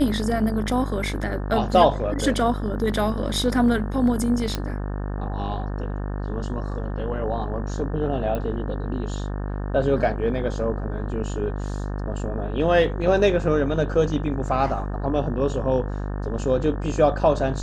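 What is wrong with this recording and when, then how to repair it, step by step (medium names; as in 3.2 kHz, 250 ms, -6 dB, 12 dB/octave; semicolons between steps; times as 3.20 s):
buzz 50 Hz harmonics 36 -28 dBFS
4.55 s: pop -11 dBFS
8.35 s: pop -16 dBFS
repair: de-click; de-hum 50 Hz, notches 36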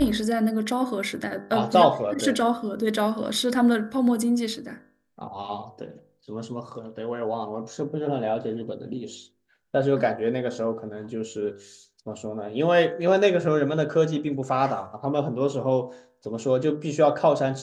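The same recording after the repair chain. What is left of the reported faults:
nothing left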